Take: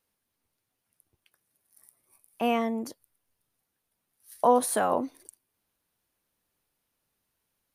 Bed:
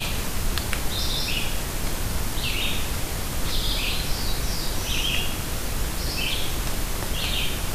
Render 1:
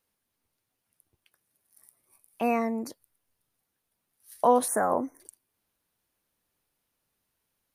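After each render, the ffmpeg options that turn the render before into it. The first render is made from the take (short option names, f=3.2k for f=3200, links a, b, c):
-filter_complex "[0:a]asettb=1/sr,asplit=3[a][b][c];[a]atrim=end=2.434[d];[b]atrim=start=2.43:end=2.9,asetpts=PTS-STARTPTS,afade=t=in:d=0.004:c=qsin,afade=t=out:st=0.466:d=0.004:c=qsin,asuperstop=centerf=3200:order=12:qfactor=3[e];[c]atrim=start=2.896[f];[d][e]acrossfade=d=0.004:c1=hsin:c2=qsin[g];[g][f]acrossfade=d=0.004:c1=qsin:c2=hsin,asettb=1/sr,asplit=3[h][i][j];[h]atrim=end=4.684[k];[i]atrim=start=4.68:end=5.2,asetpts=PTS-STARTPTS,afade=t=in:d=0.004:c=qsin,afade=t=out:st=0.516:d=0.004:c=qsin,asuperstop=centerf=3500:order=12:qfactor=0.95[l];[j]atrim=start=5.196[m];[k][l]acrossfade=d=0.004:c1=hsin:c2=qsin[n];[n][m]acrossfade=d=0.004:c1=qsin:c2=hsin"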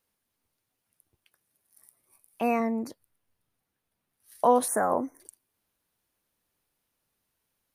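-filter_complex "[0:a]asettb=1/sr,asplit=3[a][b][c];[a]atrim=end=2.604[d];[b]atrim=start=2.6:end=4.35,asetpts=PTS-STARTPTS,afade=t=in:d=0.004:c=qsin,afade=t=out:st=1.746:d=0.004:c=qsin,bass=f=250:g=3,treble=f=4k:g=-5[e];[c]atrim=start=4.346[f];[d][e]acrossfade=d=0.004:c1=hsin:c2=qsin[g];[g][f]acrossfade=d=0.004:c1=qsin:c2=hsin"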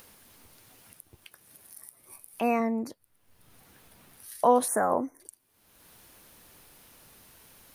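-af "acompressor=mode=upward:threshold=-35dB:ratio=2.5"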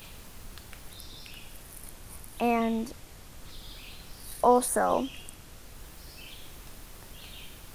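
-filter_complex "[1:a]volume=-20.5dB[a];[0:a][a]amix=inputs=2:normalize=0"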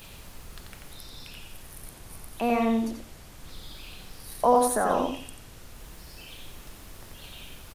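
-filter_complex "[0:a]asplit=2[a][b];[b]adelay=88,lowpass=f=4.7k:p=1,volume=-3dB,asplit=2[c][d];[d]adelay=88,lowpass=f=4.7k:p=1,volume=0.26,asplit=2[e][f];[f]adelay=88,lowpass=f=4.7k:p=1,volume=0.26,asplit=2[g][h];[h]adelay=88,lowpass=f=4.7k:p=1,volume=0.26[i];[a][c][e][g][i]amix=inputs=5:normalize=0"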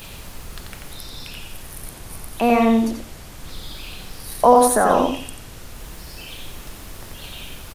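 -af "volume=8.5dB,alimiter=limit=-1dB:level=0:latency=1"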